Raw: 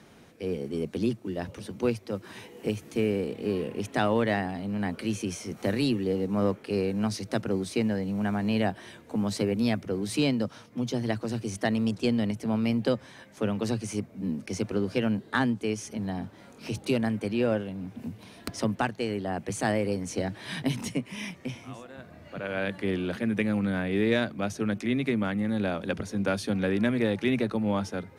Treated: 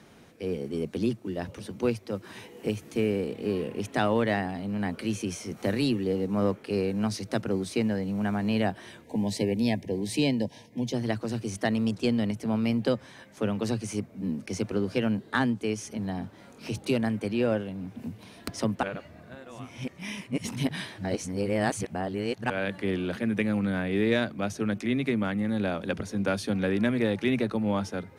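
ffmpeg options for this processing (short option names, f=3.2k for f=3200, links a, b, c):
-filter_complex "[0:a]asettb=1/sr,asplit=3[a][b][c];[a]atrim=end=9.044[d];[b]atrim=start=9.04:end=10.93,asetpts=PTS-STARTPTS,afade=t=in:d=0.004:c=qsin,afade=t=out:st=1.886:d=0.004:c=qsin,asuperstop=centerf=1300:order=20:qfactor=2.1[e];[c]atrim=start=10.926[f];[d][e]acrossfade=d=0.004:c1=hsin:c2=qsin[g];[g][f]acrossfade=d=0.004:c1=qsin:c2=hsin,asplit=3[h][i][j];[h]atrim=end=18.832[k];[i]atrim=start=18.828:end=22.502,asetpts=PTS-STARTPTS,areverse[l];[j]atrim=start=22.498[m];[k][l]acrossfade=d=0.004:c1=hsin:c2=hsin[n];[n][m]acrossfade=d=0.004:c1=hsin:c2=hsin"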